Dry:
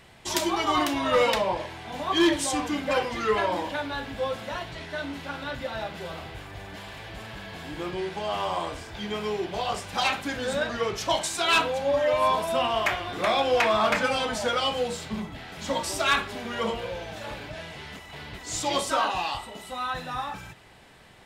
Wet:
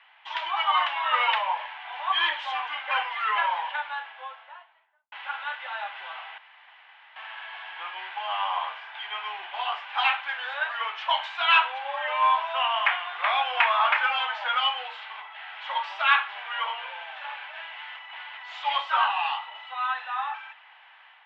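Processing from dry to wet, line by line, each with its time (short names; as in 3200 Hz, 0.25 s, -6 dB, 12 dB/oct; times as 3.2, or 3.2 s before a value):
3.56–5.12 studio fade out
6.38–7.16 room tone
whole clip: elliptic band-pass 840–3100 Hz, stop band 60 dB; AGC gain up to 4 dB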